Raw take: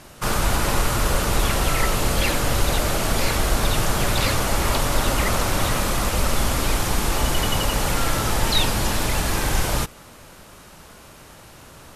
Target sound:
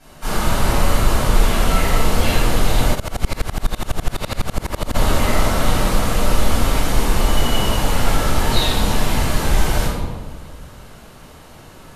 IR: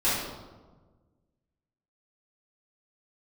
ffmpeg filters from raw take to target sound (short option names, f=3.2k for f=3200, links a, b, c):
-filter_complex "[1:a]atrim=start_sample=2205,asetrate=36162,aresample=44100[a];[0:a][a]afir=irnorm=-1:irlink=0,asplit=3[b][c][d];[b]afade=t=out:st=2.94:d=0.02[e];[c]aeval=exprs='val(0)*pow(10,-26*if(lt(mod(-12*n/s,1),2*abs(-12)/1000),1-mod(-12*n/s,1)/(2*abs(-12)/1000),(mod(-12*n/s,1)-2*abs(-12)/1000)/(1-2*abs(-12)/1000))/20)':c=same,afade=t=in:st=2.94:d=0.02,afade=t=out:st=4.94:d=0.02[f];[d]afade=t=in:st=4.94:d=0.02[g];[e][f][g]amix=inputs=3:normalize=0,volume=-12.5dB"